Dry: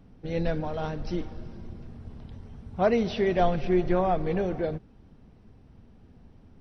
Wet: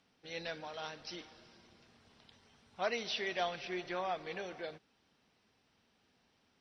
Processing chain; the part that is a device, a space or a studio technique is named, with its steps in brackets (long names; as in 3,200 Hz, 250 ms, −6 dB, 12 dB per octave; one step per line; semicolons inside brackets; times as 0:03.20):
piezo pickup straight into a mixer (low-pass filter 5,200 Hz 12 dB per octave; first difference)
level +8.5 dB